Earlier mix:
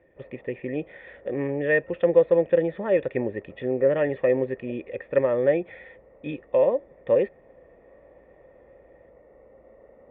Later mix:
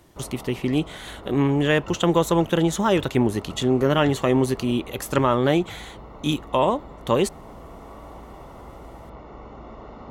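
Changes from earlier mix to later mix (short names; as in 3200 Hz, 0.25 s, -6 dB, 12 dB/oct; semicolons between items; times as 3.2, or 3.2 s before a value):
speech -8.0 dB; master: remove vocal tract filter e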